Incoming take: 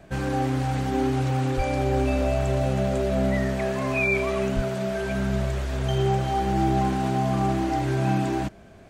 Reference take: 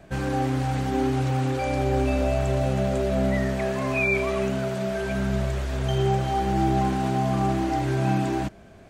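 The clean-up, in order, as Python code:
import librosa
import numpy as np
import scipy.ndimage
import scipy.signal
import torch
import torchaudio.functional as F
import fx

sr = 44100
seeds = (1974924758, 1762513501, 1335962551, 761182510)

y = fx.fix_declip(x, sr, threshold_db=-14.0)
y = fx.highpass(y, sr, hz=140.0, slope=24, at=(1.56, 1.68), fade=0.02)
y = fx.highpass(y, sr, hz=140.0, slope=24, at=(4.55, 4.67), fade=0.02)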